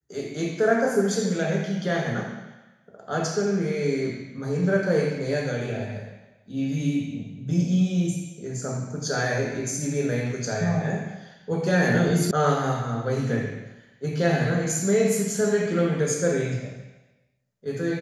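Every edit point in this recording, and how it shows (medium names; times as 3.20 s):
12.31 s: sound stops dead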